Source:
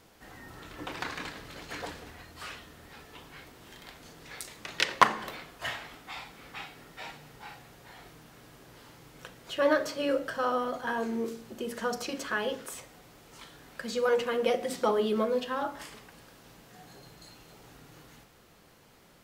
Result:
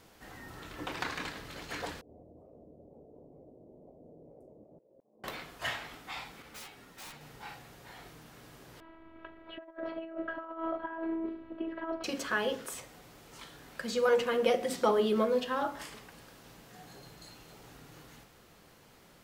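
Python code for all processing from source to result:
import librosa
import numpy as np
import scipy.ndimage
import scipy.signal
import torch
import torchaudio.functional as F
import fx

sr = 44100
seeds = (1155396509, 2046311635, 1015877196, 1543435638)

y = fx.chain(x, sr, fx.ellip_lowpass(hz=610.0, order=4, stop_db=60),
    fx.tilt_eq(slope=3.5),
    fx.over_compress(threshold_db=-60.0, ratio=-1.0), at=(2.01, 5.24))
y = fx.chain(y, sr, fx.overflow_wrap(gain_db=37.5),
    fx.ensemble(), at=(6.42, 7.21))
y = fx.chain(y, sr, fx.robotise(hz=326.0),
    fx.over_compress(threshold_db=-36.0, ratio=-0.5),
    fx.gaussian_blur(sigma=3.9), at=(8.8, 12.04))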